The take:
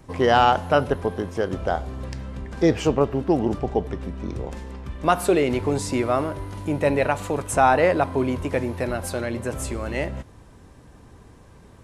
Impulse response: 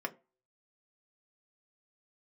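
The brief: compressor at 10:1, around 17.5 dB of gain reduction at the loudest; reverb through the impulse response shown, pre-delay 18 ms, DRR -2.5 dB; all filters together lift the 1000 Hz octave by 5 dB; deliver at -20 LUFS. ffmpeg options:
-filter_complex "[0:a]equalizer=f=1k:t=o:g=7,acompressor=threshold=-26dB:ratio=10,asplit=2[a][b];[1:a]atrim=start_sample=2205,adelay=18[c];[b][c]afir=irnorm=-1:irlink=0,volume=-1dB[d];[a][d]amix=inputs=2:normalize=0,volume=7.5dB"

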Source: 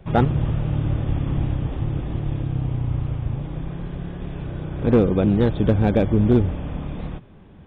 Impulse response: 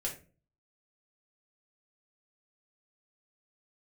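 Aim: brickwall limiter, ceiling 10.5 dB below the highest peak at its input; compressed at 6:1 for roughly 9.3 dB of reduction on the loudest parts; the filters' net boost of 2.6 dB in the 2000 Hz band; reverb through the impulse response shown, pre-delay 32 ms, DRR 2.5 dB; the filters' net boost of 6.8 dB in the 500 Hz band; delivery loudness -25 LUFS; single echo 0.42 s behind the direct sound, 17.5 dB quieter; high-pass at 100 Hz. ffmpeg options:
-filter_complex "[0:a]highpass=100,equalizer=f=500:t=o:g=8,equalizer=f=2k:t=o:g=3,acompressor=threshold=-18dB:ratio=6,alimiter=limit=-16.5dB:level=0:latency=1,aecho=1:1:420:0.133,asplit=2[a][b];[1:a]atrim=start_sample=2205,adelay=32[c];[b][c]afir=irnorm=-1:irlink=0,volume=-4.5dB[d];[a][d]amix=inputs=2:normalize=0,volume=0.5dB"

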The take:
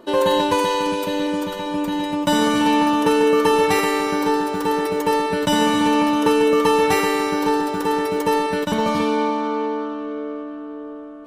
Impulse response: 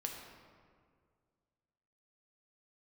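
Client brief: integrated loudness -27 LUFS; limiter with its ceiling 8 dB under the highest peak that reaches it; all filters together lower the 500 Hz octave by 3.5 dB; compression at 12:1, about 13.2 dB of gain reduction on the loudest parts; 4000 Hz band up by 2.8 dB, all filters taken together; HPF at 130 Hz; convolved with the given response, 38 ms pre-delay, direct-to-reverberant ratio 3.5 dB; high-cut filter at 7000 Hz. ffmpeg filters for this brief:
-filter_complex "[0:a]highpass=130,lowpass=7k,equalizer=f=500:t=o:g=-4,equalizer=f=4k:t=o:g=4,acompressor=threshold=-28dB:ratio=12,alimiter=level_in=0.5dB:limit=-24dB:level=0:latency=1,volume=-0.5dB,asplit=2[a][b];[1:a]atrim=start_sample=2205,adelay=38[c];[b][c]afir=irnorm=-1:irlink=0,volume=-3dB[d];[a][d]amix=inputs=2:normalize=0,volume=4dB"

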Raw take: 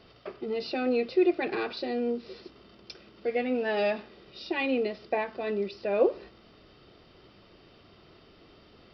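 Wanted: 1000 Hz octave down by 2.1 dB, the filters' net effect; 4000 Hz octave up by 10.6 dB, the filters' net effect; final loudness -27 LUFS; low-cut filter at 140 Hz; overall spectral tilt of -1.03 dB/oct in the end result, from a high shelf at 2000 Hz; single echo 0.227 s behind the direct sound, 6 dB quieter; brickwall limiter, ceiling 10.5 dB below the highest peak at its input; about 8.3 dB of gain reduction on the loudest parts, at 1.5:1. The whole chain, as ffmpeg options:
-af "highpass=140,equalizer=f=1k:t=o:g=-5,highshelf=f=2k:g=8,equalizer=f=4k:t=o:g=5.5,acompressor=threshold=-42dB:ratio=1.5,alimiter=level_in=7.5dB:limit=-24dB:level=0:latency=1,volume=-7.5dB,aecho=1:1:227:0.501,volume=13.5dB"

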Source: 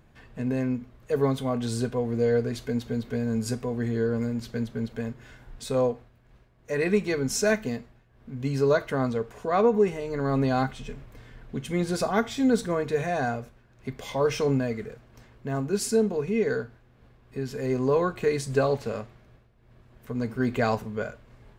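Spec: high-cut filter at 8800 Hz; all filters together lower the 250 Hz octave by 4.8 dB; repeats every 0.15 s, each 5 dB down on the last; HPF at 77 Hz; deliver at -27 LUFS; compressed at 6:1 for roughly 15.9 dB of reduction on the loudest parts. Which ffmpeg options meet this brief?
-af "highpass=77,lowpass=8.8k,equalizer=f=250:t=o:g=-5.5,acompressor=threshold=-37dB:ratio=6,aecho=1:1:150|300|450|600|750|900|1050:0.562|0.315|0.176|0.0988|0.0553|0.031|0.0173,volume=13dB"

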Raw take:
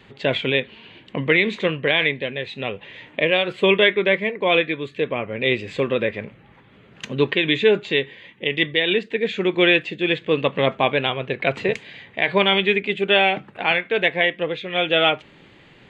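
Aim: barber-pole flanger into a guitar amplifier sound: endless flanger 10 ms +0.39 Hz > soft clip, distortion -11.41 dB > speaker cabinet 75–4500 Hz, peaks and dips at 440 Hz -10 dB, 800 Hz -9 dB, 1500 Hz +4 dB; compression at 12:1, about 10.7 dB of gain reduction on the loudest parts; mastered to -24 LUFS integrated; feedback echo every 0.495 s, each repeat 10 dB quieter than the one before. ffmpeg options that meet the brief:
-filter_complex "[0:a]acompressor=threshold=-22dB:ratio=12,aecho=1:1:495|990|1485|1980:0.316|0.101|0.0324|0.0104,asplit=2[a][b];[b]adelay=10,afreqshift=0.39[c];[a][c]amix=inputs=2:normalize=1,asoftclip=threshold=-26.5dB,highpass=75,equalizer=f=440:t=q:w=4:g=-10,equalizer=f=800:t=q:w=4:g=-9,equalizer=f=1.5k:t=q:w=4:g=4,lowpass=f=4.5k:w=0.5412,lowpass=f=4.5k:w=1.3066,volume=11dB"

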